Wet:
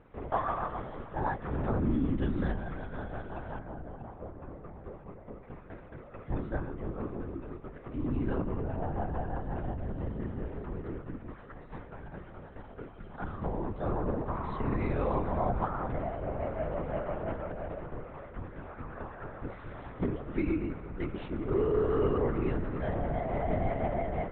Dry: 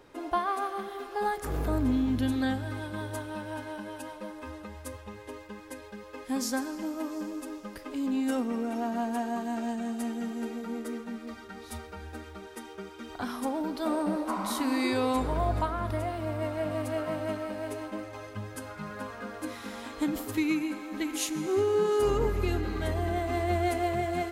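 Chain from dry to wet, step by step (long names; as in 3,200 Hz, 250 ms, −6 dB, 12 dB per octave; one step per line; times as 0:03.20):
linear-prediction vocoder at 8 kHz whisper
low-pass filter 2,200 Hz 12 dB per octave, from 0:03.59 1,000 Hz, from 0:05.43 1,700 Hz
level −2 dB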